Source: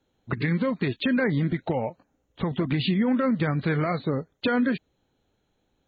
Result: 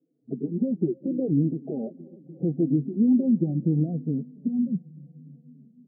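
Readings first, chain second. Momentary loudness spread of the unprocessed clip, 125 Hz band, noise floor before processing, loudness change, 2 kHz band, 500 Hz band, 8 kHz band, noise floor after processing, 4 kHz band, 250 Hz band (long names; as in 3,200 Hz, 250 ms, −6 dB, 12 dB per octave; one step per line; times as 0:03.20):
7 LU, −0.5 dB, −73 dBFS, 0.0 dB, below −40 dB, −4.0 dB, can't be measured, −61 dBFS, below −40 dB, +2.0 dB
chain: delay with a low-pass on its return 296 ms, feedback 82%, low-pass 640 Hz, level −23.5 dB
low-pass filter sweep 340 Hz → 170 Hz, 0:03.20–0:04.87
brick-wall band-pass 130–810 Hz
barber-pole flanger 3.9 ms −0.77 Hz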